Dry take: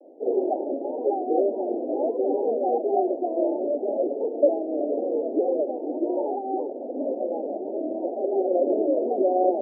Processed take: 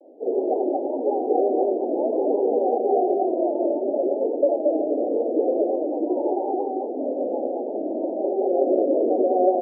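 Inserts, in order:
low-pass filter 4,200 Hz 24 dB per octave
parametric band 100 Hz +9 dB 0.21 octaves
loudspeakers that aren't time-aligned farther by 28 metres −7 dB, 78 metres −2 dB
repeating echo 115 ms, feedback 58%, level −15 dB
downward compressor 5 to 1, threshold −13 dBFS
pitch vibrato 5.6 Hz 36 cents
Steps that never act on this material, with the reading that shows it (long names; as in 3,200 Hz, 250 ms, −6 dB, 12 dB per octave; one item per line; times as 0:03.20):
low-pass filter 4,200 Hz: nothing at its input above 910 Hz
parametric band 100 Hz: nothing at its input below 200 Hz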